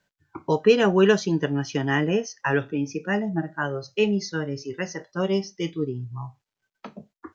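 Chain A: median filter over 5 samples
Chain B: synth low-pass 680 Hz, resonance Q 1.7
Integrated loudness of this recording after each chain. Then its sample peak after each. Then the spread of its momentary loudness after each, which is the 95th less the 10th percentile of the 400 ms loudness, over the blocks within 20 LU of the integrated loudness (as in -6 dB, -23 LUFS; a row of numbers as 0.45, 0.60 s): -24.5, -23.0 LUFS; -5.5, -4.5 dBFS; 16, 15 LU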